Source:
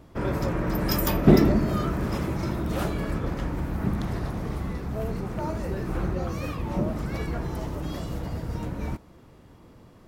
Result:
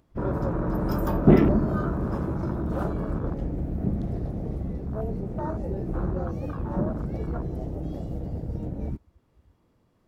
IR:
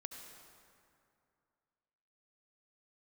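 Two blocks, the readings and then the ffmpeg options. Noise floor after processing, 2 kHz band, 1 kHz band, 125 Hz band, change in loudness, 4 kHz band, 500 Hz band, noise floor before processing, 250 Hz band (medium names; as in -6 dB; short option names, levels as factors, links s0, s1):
-66 dBFS, -6.0 dB, -1.5 dB, 0.0 dB, -0.5 dB, under -10 dB, 0.0 dB, -52 dBFS, 0.0 dB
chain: -af "acompressor=mode=upward:threshold=0.00562:ratio=2.5,afwtdn=0.0251"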